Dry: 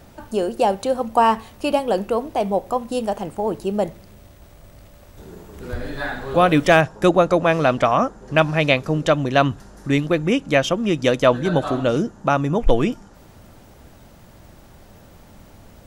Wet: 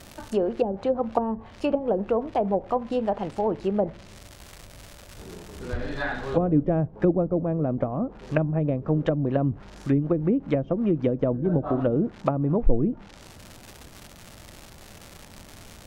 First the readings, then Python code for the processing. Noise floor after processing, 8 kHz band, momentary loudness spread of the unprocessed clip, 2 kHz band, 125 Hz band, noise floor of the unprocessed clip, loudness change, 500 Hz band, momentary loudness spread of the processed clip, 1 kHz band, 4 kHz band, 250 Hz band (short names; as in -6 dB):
-47 dBFS, under -10 dB, 9 LU, -14.5 dB, -2.0 dB, -47 dBFS, -6.0 dB, -6.0 dB, 12 LU, -11.0 dB, -16.5 dB, -2.5 dB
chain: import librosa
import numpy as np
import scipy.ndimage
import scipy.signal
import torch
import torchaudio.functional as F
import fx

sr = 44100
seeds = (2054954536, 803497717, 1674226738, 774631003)

y = fx.dmg_crackle(x, sr, seeds[0], per_s=300.0, level_db=-29.0)
y = fx.env_lowpass_down(y, sr, base_hz=350.0, full_db=-14.0)
y = y * librosa.db_to_amplitude(-2.0)